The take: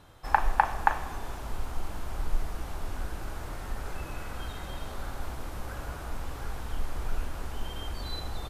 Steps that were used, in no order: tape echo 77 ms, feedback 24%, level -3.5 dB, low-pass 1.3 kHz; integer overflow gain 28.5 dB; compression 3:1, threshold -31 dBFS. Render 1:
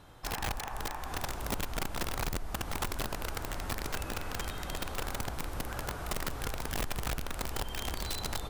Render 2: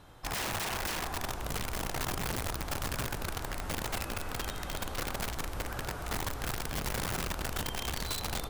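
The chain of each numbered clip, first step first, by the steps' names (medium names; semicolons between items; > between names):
compression > tape echo > integer overflow; tape echo > integer overflow > compression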